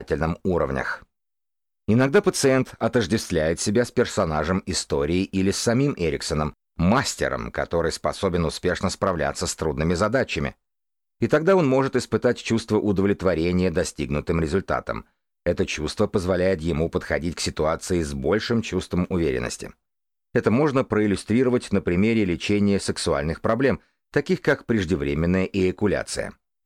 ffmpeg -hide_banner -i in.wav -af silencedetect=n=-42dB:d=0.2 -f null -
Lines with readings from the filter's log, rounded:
silence_start: 1.03
silence_end: 1.88 | silence_duration: 0.86
silence_start: 6.52
silence_end: 6.79 | silence_duration: 0.26
silence_start: 10.52
silence_end: 11.21 | silence_duration: 0.69
silence_start: 15.01
silence_end: 15.46 | silence_duration: 0.45
silence_start: 19.71
silence_end: 20.34 | silence_duration: 0.64
silence_start: 23.78
silence_end: 24.14 | silence_duration: 0.36
silence_start: 26.33
silence_end: 26.66 | silence_duration: 0.33